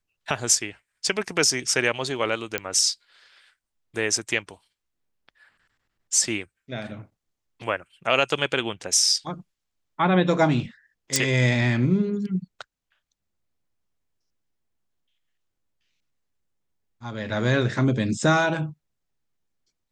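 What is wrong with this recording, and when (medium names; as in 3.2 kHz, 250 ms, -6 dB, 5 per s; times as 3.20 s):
2.58 s: pop -8 dBFS
11.16 s: pop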